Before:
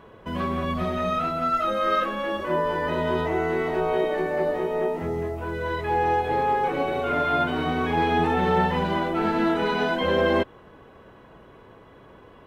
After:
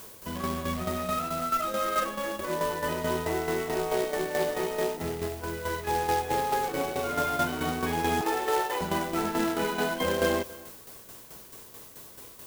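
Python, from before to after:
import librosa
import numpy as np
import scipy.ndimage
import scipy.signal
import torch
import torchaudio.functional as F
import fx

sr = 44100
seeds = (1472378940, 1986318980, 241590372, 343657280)

y = fx.high_shelf(x, sr, hz=2300.0, db=11.5, at=(4.3, 4.84))
y = fx.steep_highpass(y, sr, hz=290.0, slope=96, at=(8.21, 8.81))
y = fx.quant_companded(y, sr, bits=4)
y = fx.dmg_noise_colour(y, sr, seeds[0], colour='blue', level_db=-43.0)
y = fx.tremolo_shape(y, sr, shape='saw_down', hz=4.6, depth_pct=60)
y = y + 10.0 ** (-20.5 / 20.0) * np.pad(y, (int(279 * sr / 1000.0), 0))[:len(y)]
y = y * librosa.db_to_amplitude(-2.5)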